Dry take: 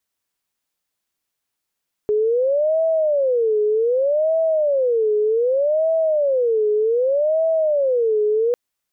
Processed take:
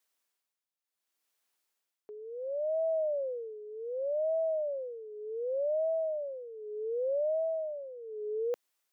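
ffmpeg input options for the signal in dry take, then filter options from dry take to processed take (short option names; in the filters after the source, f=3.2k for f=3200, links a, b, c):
-f lavfi -i "aevalsrc='0.178*sin(2*PI*(535.5*t-114.5/(2*PI*0.65)*sin(2*PI*0.65*t)))':d=6.45:s=44100"
-af "highpass=330,alimiter=level_in=2.5dB:limit=-24dB:level=0:latency=1:release=12,volume=-2.5dB,tremolo=f=0.69:d=0.83"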